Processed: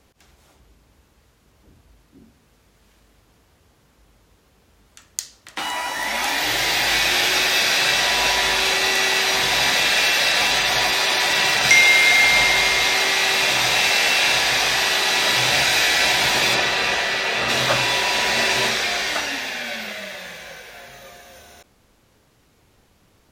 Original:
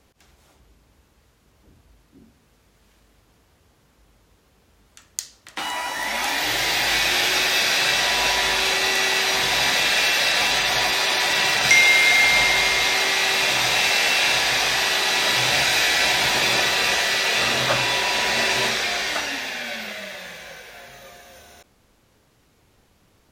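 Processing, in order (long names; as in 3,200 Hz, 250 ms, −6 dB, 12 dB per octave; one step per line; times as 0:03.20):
0:16.54–0:17.48: high-shelf EQ 7,900 Hz → 3,900 Hz −11.5 dB
level +1.5 dB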